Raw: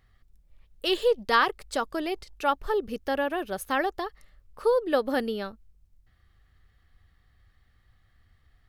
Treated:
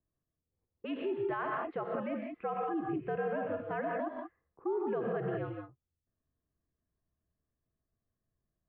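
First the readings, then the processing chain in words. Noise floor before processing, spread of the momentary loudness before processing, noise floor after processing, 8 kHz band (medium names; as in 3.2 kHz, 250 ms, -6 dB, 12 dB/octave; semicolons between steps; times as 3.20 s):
-65 dBFS, 10 LU, under -85 dBFS, under -30 dB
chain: gated-style reverb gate 210 ms rising, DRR 2 dB; dynamic bell 670 Hz, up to +7 dB, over -38 dBFS, Q 1.5; peak limiter -17.5 dBFS, peak gain reduction 10.5 dB; level-controlled noise filter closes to 410 Hz, open at -24.5 dBFS; mistuned SSB -92 Hz 150–2500 Hz; trim -9 dB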